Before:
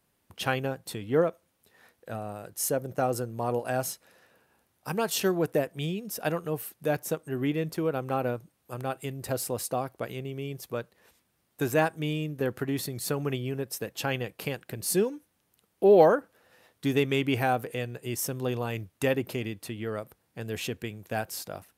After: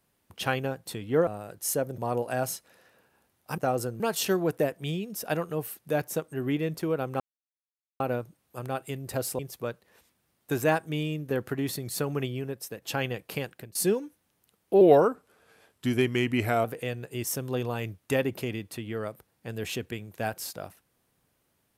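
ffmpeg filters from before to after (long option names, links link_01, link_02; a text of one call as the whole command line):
ffmpeg -i in.wav -filter_complex "[0:a]asplit=11[link_01][link_02][link_03][link_04][link_05][link_06][link_07][link_08][link_09][link_10][link_11];[link_01]atrim=end=1.272[link_12];[link_02]atrim=start=2.218:end=2.932[link_13];[link_03]atrim=start=3.348:end=4.952[link_14];[link_04]atrim=start=2.928:end=3.352[link_15];[link_05]atrim=start=4.948:end=8.15,asetpts=PTS-STARTPTS,afade=type=out:start_time=3.198:duration=0.004:curve=hsin,apad=pad_dur=0.8[link_16];[link_06]atrim=start=8.15:end=9.542,asetpts=PTS-STARTPTS,afade=type=in:duration=0.004:curve=hsin[link_17];[link_07]atrim=start=10.488:end=13.92,asetpts=PTS-STARTPTS,afade=type=out:start_time=2.862:duration=0.57:silence=0.501187[link_18];[link_08]atrim=start=13.92:end=14.85,asetpts=PTS-STARTPTS,afade=type=in:duration=0.004:curve=hsin:silence=0.501187,afade=type=out:start_time=0.68:duration=0.25:silence=0.0668344[link_19];[link_09]atrim=start=14.85:end=15.914,asetpts=PTS-STARTPTS,afade=type=in:duration=0.004:curve=hsin:silence=0.0668344[link_20];[link_10]atrim=start=15.91:end=17.56,asetpts=PTS-STARTPTS,asetrate=39690,aresample=44100[link_21];[link_11]atrim=start=17.556[link_22];[link_12][link_13]acrossfade=duration=0.004:curve1=hsin:curve2=hsin[link_23];[link_23][link_14]acrossfade=duration=0.004:curve1=hsin:curve2=hsin[link_24];[link_24][link_15]acrossfade=duration=0.004:curve1=hsin:curve2=hsin[link_25];[link_16][link_17]concat=n=2:v=0:a=1[link_26];[link_25][link_26]acrossfade=duration=0.004:curve1=hsin:curve2=hsin[link_27];[link_18][link_19][link_20]concat=n=3:v=0:a=1[link_28];[link_27][link_28]acrossfade=duration=0.004:curve1=hsin:curve2=hsin[link_29];[link_29][link_21]acrossfade=duration=0.004:curve1=hsin:curve2=hsin[link_30];[link_30][link_22]acrossfade=duration=0.004:curve1=hsin:curve2=hsin" out.wav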